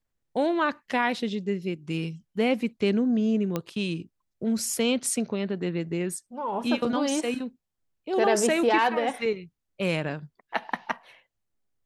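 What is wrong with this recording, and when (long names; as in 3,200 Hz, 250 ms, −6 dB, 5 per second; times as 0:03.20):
0:03.56: click −14 dBFS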